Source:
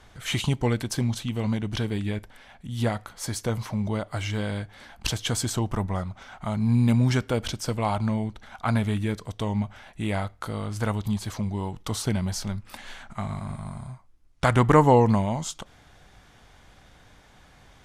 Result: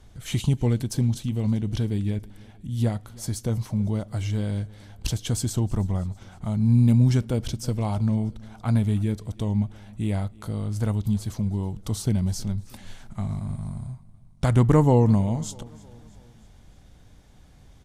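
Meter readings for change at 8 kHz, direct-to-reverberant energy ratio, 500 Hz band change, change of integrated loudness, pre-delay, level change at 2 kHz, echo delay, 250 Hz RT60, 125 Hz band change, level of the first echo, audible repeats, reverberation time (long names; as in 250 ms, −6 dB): −2.0 dB, no reverb audible, −3.0 dB, +1.5 dB, no reverb audible, −9.0 dB, 320 ms, no reverb audible, +4.0 dB, −23.0 dB, 3, no reverb audible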